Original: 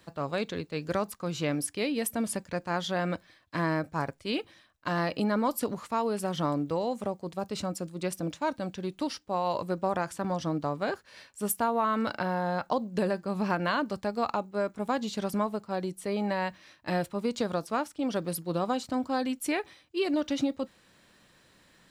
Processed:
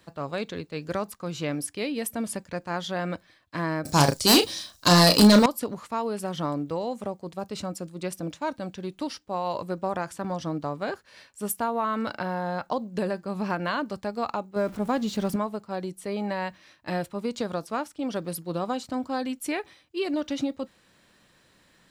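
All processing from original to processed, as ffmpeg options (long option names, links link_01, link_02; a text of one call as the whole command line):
ffmpeg -i in.wav -filter_complex "[0:a]asettb=1/sr,asplit=3[link_01][link_02][link_03];[link_01]atrim=end=3.854[link_04];[link_02]atrim=start=3.85:end=5.46,asetpts=PTS-STARTPTS,afade=type=in:duration=0.004:curve=qsin,afade=type=out:start_time=1.606:duration=0.004:curve=qsin,highshelf=frequency=3300:width_type=q:width=1.5:gain=14,aeval=exprs='0.251*sin(PI/2*3.16*val(0)/0.251)':channel_layout=same,asplit=2[link_05][link_06];[link_06]adelay=34,volume=-7.5dB[link_07];[link_05][link_07]amix=inputs=2:normalize=0,atrim=end_sample=71001[link_08];[link_03]atrim=start=5.456[link_09];[link_04][link_08]acrossfade=duration=0.004:curve1=hsin:curve2=qsin[link_10];[link_10][link_09]acrossfade=duration=0.004:curve1=qsin:curve2=hsin,asettb=1/sr,asplit=3[link_11][link_12][link_13];[link_11]atrim=end=14.564[link_14];[link_12]atrim=start=14.56:end=15.36,asetpts=PTS-STARTPTS,afade=type=in:duration=0.004:curve=qsin,afade=type=out:start_time=0.796:duration=0.004:curve=qsin,aeval=exprs='val(0)+0.5*0.0075*sgn(val(0))':channel_layout=same,lowshelf=frequency=450:gain=6[link_15];[link_13]atrim=start=15.356[link_16];[link_14][link_15]acrossfade=duration=0.004:curve1=hsin:curve2=qsin[link_17];[link_17][link_16]acrossfade=duration=0.004:curve1=qsin:curve2=hsin" out.wav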